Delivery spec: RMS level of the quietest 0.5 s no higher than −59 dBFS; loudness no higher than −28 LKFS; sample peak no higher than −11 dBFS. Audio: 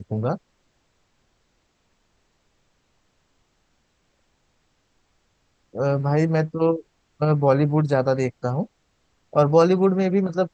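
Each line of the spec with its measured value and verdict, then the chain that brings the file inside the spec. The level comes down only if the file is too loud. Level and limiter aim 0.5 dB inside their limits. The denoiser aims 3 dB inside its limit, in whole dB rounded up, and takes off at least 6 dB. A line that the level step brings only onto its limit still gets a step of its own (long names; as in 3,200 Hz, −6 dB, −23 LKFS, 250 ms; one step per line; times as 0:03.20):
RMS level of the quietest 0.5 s −68 dBFS: in spec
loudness −21.5 LKFS: out of spec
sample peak −4.0 dBFS: out of spec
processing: level −7 dB
brickwall limiter −11.5 dBFS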